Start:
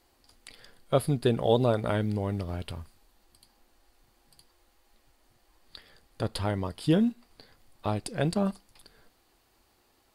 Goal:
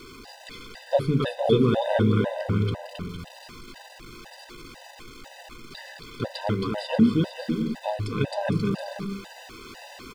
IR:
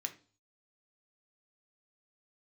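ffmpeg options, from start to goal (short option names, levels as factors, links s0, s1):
-filter_complex "[0:a]aeval=exprs='val(0)+0.5*0.0112*sgn(val(0))':c=same,asplit=2[s0][s1];[1:a]atrim=start_sample=2205,lowshelf=f=330:g=8[s2];[s1][s2]afir=irnorm=-1:irlink=0,volume=1[s3];[s0][s3]amix=inputs=2:normalize=0,acrossover=split=5400[s4][s5];[s5]acompressor=threshold=0.00126:ratio=4:attack=1:release=60[s6];[s4][s6]amix=inputs=2:normalize=0,aecho=1:1:270|459|591.3|683.9|748.7:0.631|0.398|0.251|0.158|0.1,afftfilt=real='re*gt(sin(2*PI*2*pts/sr)*(1-2*mod(floor(b*sr/1024/510),2)),0)':imag='im*gt(sin(2*PI*2*pts/sr)*(1-2*mod(floor(b*sr/1024/510),2)),0)':win_size=1024:overlap=0.75"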